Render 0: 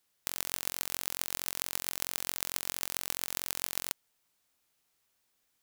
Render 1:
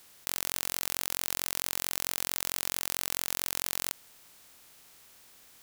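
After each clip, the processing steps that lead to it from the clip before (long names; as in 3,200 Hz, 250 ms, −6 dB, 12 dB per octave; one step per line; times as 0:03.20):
compressor on every frequency bin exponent 0.6
in parallel at +3 dB: compressor whose output falls as the input rises −37 dBFS
on the sum: level −6 dB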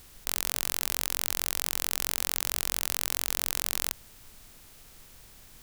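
background noise brown −57 dBFS
level +2.5 dB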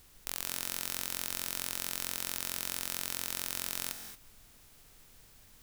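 convolution reverb, pre-delay 3 ms, DRR 7 dB
level −7 dB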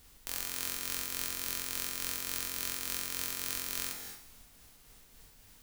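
shaped tremolo triangle 3.5 Hz, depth 40%
coupled-rooms reverb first 0.64 s, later 2.4 s, DRR 2.5 dB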